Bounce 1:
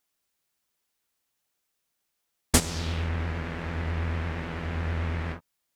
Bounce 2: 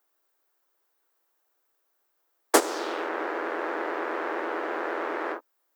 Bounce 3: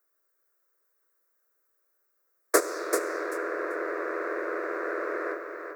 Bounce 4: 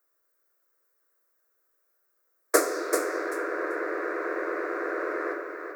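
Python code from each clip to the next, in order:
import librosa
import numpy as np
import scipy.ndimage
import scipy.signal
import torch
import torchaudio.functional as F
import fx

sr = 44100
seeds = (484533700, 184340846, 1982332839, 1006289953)

y1 = scipy.signal.sosfilt(scipy.signal.butter(12, 300.0, 'highpass', fs=sr, output='sos'), x)
y1 = fx.band_shelf(y1, sr, hz=5100.0, db=-11.5, octaves=2.9)
y1 = y1 * 10.0 ** (9.0 / 20.0)
y2 = fx.fixed_phaser(y1, sr, hz=840.0, stages=6)
y2 = fx.echo_feedback(y2, sr, ms=388, feedback_pct=18, wet_db=-6.0)
y3 = fx.room_shoebox(y2, sr, seeds[0], volume_m3=120.0, walls='mixed', distance_m=0.54)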